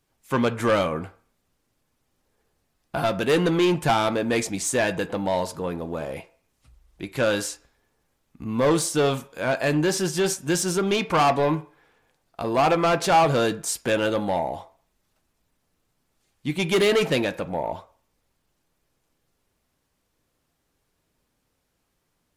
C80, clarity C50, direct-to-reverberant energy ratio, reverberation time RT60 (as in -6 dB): 21.0 dB, 17.5 dB, 10.5 dB, 0.45 s